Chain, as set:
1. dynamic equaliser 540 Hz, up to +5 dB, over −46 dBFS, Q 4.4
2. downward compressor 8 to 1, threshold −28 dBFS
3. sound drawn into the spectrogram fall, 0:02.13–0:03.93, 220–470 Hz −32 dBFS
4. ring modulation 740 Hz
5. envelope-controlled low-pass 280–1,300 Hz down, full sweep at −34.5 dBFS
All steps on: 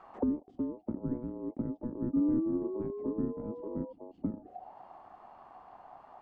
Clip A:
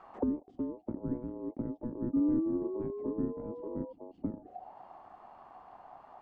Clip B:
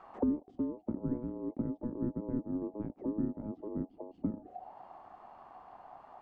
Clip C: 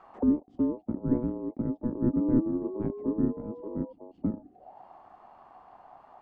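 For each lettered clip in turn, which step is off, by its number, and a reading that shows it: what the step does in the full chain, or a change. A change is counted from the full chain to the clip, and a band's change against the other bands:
1, 125 Hz band −1.5 dB
3, 500 Hz band −3.0 dB
2, average gain reduction 3.0 dB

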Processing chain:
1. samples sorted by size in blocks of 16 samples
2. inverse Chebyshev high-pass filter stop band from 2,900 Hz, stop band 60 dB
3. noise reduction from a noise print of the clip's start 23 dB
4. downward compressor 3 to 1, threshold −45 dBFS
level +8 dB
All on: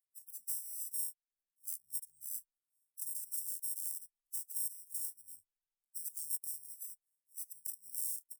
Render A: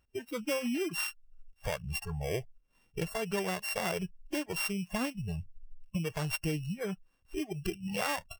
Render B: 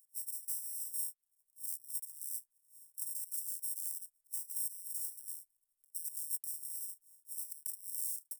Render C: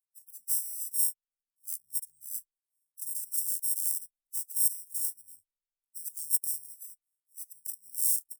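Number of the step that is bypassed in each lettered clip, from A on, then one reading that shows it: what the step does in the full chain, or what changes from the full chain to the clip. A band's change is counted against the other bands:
2, change in crest factor −8.5 dB
3, change in momentary loudness spread −3 LU
4, average gain reduction 5.5 dB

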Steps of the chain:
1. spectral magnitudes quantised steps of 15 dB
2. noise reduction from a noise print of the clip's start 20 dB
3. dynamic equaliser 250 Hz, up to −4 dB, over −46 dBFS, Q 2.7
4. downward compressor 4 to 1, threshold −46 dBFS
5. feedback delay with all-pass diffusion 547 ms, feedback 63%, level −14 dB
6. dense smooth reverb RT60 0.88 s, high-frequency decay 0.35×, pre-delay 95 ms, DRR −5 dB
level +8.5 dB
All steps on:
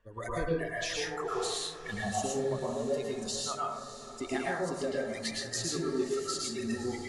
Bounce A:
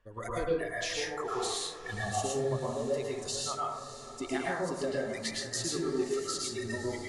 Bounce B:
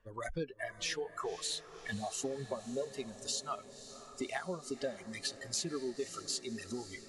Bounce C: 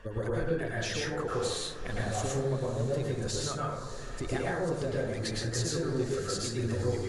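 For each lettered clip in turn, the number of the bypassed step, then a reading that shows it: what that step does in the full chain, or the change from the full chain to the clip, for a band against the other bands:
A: 1, 250 Hz band −1.5 dB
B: 6, change in crest factor +2.5 dB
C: 2, 125 Hz band +10.5 dB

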